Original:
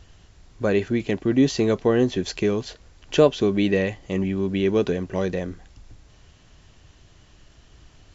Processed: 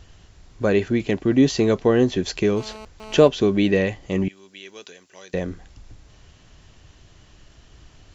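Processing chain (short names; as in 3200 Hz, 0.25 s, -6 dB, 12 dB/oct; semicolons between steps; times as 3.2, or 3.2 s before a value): 2.57–3.28 GSM buzz -41 dBFS; 4.28–5.34 differentiator; gain +2 dB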